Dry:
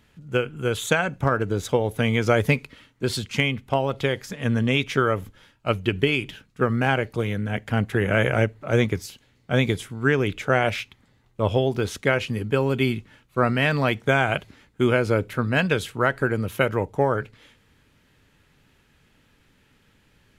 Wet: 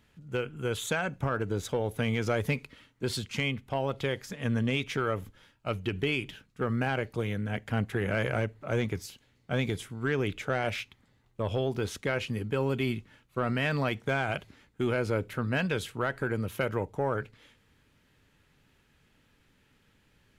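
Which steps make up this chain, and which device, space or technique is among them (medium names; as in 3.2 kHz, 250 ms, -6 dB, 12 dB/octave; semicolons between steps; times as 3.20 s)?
soft clipper into limiter (saturation -9 dBFS, distortion -22 dB; peak limiter -14 dBFS, peak gain reduction 4 dB); trim -5.5 dB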